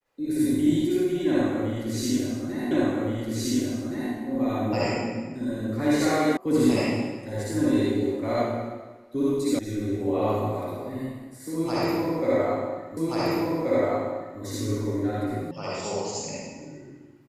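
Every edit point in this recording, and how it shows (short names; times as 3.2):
2.71 repeat of the last 1.42 s
6.37 sound cut off
9.59 sound cut off
12.97 repeat of the last 1.43 s
15.51 sound cut off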